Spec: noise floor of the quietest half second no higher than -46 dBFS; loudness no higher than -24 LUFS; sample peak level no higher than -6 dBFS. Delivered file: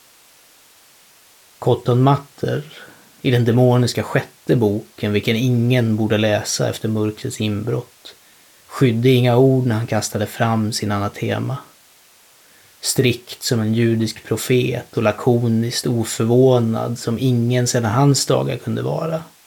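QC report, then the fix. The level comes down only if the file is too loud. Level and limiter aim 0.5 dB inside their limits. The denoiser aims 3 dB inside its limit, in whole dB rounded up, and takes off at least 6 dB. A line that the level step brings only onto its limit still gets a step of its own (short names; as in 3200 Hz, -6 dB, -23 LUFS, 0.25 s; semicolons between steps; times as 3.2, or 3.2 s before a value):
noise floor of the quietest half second -51 dBFS: OK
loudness -18.5 LUFS: fail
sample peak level -4.0 dBFS: fail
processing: gain -6 dB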